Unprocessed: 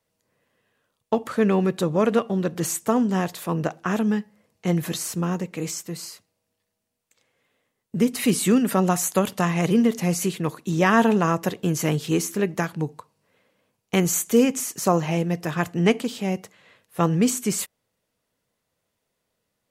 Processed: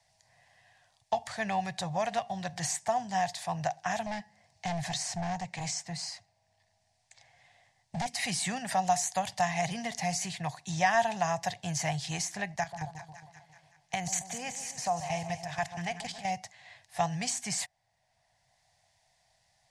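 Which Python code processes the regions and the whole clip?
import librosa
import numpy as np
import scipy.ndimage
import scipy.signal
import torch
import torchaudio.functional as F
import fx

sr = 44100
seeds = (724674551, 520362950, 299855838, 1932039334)

y = fx.chain(x, sr, fx.lowpass(hz=9700.0, slope=12),
    fx.low_shelf(hz=480.0, db=4.0),
    fx.overload_stage(gain_db=21.0), at=(4.06, 8.06))
y = fx.chain(y, sr, fx.level_steps(step_db=12),
    fx.echo_split(split_hz=1100.0, low_ms=136, high_ms=188, feedback_pct=52, wet_db=-11.0), at=(12.56, 16.32))
y = fx.curve_eq(y, sr, hz=(130.0, 280.0, 460.0, 730.0, 1300.0, 1800.0, 2800.0, 5000.0, 9600.0, 15000.0), db=(0, -24, -23, 10, -13, 4, -3, 6, -2, -27))
y = fx.band_squash(y, sr, depth_pct=40)
y = F.gain(torch.from_numpy(y), -4.5).numpy()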